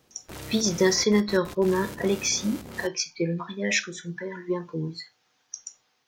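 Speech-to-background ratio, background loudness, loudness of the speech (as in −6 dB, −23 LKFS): 14.5 dB, −40.5 LKFS, −26.0 LKFS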